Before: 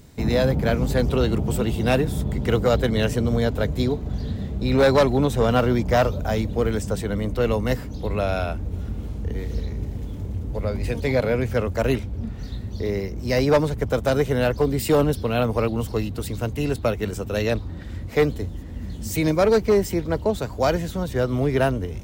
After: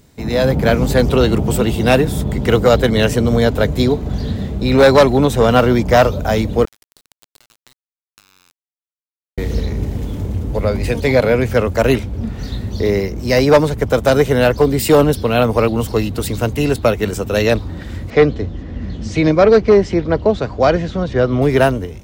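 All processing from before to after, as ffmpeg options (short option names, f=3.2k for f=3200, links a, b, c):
-filter_complex "[0:a]asettb=1/sr,asplit=3[a][b][c];[a]atrim=end=6.654[d];[b]atrim=start=6.65:end=9.38,asetpts=PTS-STARTPTS,afade=t=in:d=0.004:c=qsin,afade=t=out:st=2.726:d=0.004:c=qsin,bandpass=f=4.3k:t=q:w=5.8,acrusher=bits=4:dc=4:mix=0:aa=0.000001,acompressor=threshold=-56dB:ratio=8:attack=3.2:release=140:knee=1:detection=peak[e];[c]atrim=start=9.376[f];[d][e]acrossfade=d=0.004:c1=hsin:c2=qsin[g];[g][f]acrossfade=d=0.004:c1=qsin:c2=hsin,asettb=1/sr,asplit=3[h][i][j];[h]atrim=end=18.104[k];[i]atrim=start=18.1:end=21.42,asetpts=PTS-STARTPTS,afade=t=in:d=0.004:c=qsin,afade=t=out:st=3.316:d=0.004:c=qsin,lowpass=f=5.9k:w=0.5412,lowpass=f=5.9k:w=1.3066,highshelf=f=3.9k:g=-8,bandreject=f=900:w=12[l];[j]atrim=start=21.416[m];[k][l]acrossfade=d=0.004:c1=hsin:c2=qsin[n];[n][m]acrossfade=d=0.004:c1=qsin:c2=hsin,lowshelf=f=170:g=-4.5,dynaudnorm=f=160:g=5:m=11.5dB"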